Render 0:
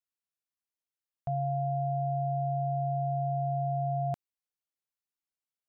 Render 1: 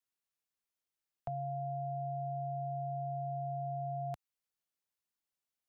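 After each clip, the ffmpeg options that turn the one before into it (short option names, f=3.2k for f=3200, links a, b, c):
-filter_complex "[0:a]acrossover=split=97|780[a][b][c];[a]acompressor=threshold=-51dB:ratio=4[d];[b]acompressor=threshold=-46dB:ratio=4[e];[c]acompressor=threshold=-44dB:ratio=4[f];[d][e][f]amix=inputs=3:normalize=0,volume=1dB"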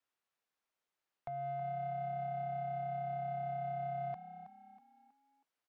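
-filter_complex "[0:a]alimiter=level_in=11.5dB:limit=-24dB:level=0:latency=1:release=425,volume=-11.5dB,asplit=2[a][b];[b]highpass=f=720:p=1,volume=14dB,asoftclip=type=tanh:threshold=-35dB[c];[a][c]amix=inputs=2:normalize=0,lowpass=f=1.2k:p=1,volume=-6dB,asplit=2[d][e];[e]asplit=4[f][g][h][i];[f]adelay=321,afreqshift=33,volume=-12dB[j];[g]adelay=642,afreqshift=66,volume=-20dB[k];[h]adelay=963,afreqshift=99,volume=-27.9dB[l];[i]adelay=1284,afreqshift=132,volume=-35.9dB[m];[j][k][l][m]amix=inputs=4:normalize=0[n];[d][n]amix=inputs=2:normalize=0,volume=2dB"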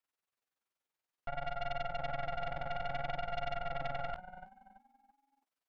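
-af "tremolo=f=21:d=0.947,flanger=delay=9.8:depth=9.6:regen=-31:speed=0.58:shape=sinusoidal,aeval=exprs='0.0168*(cos(1*acos(clip(val(0)/0.0168,-1,1)))-cos(1*PI/2))+0.00596*(cos(6*acos(clip(val(0)/0.0168,-1,1)))-cos(6*PI/2))':c=same,volume=5.5dB"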